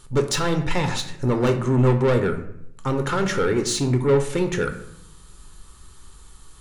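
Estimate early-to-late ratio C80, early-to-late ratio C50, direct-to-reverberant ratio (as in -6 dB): 13.0 dB, 10.0 dB, 5.5 dB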